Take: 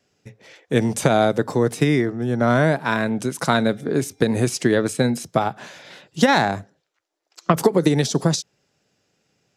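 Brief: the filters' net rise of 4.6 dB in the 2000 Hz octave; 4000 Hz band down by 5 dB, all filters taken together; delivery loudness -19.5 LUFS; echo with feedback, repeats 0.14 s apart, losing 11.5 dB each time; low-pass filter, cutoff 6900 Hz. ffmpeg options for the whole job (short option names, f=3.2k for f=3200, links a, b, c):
-af "lowpass=6.9k,equalizer=f=2k:t=o:g=7.5,equalizer=f=4k:t=o:g=-7.5,aecho=1:1:140|280|420:0.266|0.0718|0.0194"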